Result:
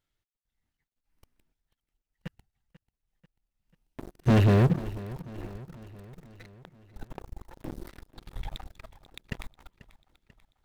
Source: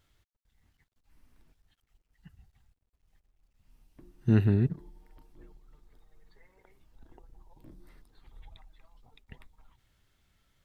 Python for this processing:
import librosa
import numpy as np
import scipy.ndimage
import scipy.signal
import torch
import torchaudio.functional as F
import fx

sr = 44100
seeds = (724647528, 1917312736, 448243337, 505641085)

p1 = fx.peak_eq(x, sr, hz=70.0, db=-6.5, octaves=1.2)
p2 = fx.notch(p1, sr, hz=1100.0, q=22.0)
p3 = fx.leveller(p2, sr, passes=5)
p4 = p3 + fx.echo_feedback(p3, sr, ms=490, feedback_pct=57, wet_db=-18, dry=0)
y = p4 * librosa.db_to_amplitude(-2.0)